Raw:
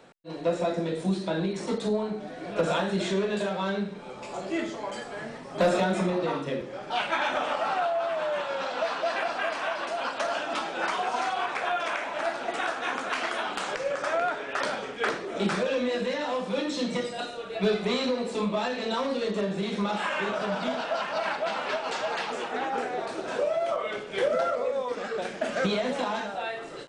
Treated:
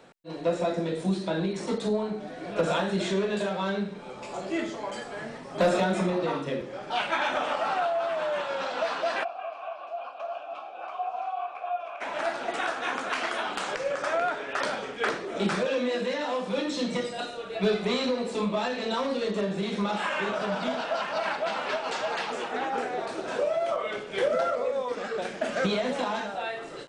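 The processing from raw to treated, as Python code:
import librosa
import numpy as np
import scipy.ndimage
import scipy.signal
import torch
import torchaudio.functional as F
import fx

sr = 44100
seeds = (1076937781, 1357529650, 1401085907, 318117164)

y = fx.vowel_filter(x, sr, vowel='a', at=(9.23, 12.0), fade=0.02)
y = fx.highpass(y, sr, hz=180.0, slope=24, at=(15.65, 16.47))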